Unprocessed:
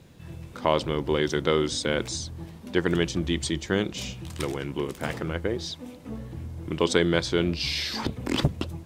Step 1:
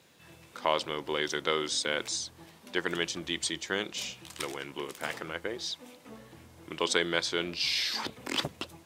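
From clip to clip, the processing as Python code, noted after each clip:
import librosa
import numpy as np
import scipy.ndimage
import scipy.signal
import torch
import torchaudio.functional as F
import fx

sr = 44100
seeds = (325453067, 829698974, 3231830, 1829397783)

y = fx.highpass(x, sr, hz=980.0, slope=6)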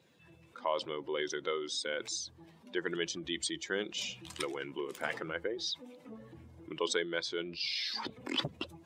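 y = fx.spec_expand(x, sr, power=1.6)
y = fx.rider(y, sr, range_db=3, speed_s=0.5)
y = y * librosa.db_to_amplitude(-3.5)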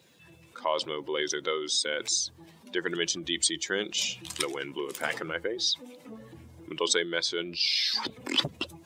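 y = fx.high_shelf(x, sr, hz=3800.0, db=9.5)
y = y * librosa.db_to_amplitude(4.0)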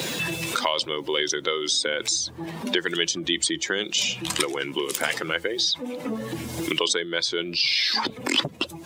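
y = fx.band_squash(x, sr, depth_pct=100)
y = y * librosa.db_to_amplitude(4.0)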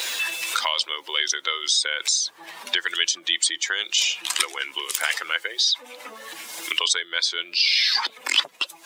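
y = scipy.signal.sosfilt(scipy.signal.butter(2, 1100.0, 'highpass', fs=sr, output='sos'), x)
y = y * librosa.db_to_amplitude(3.0)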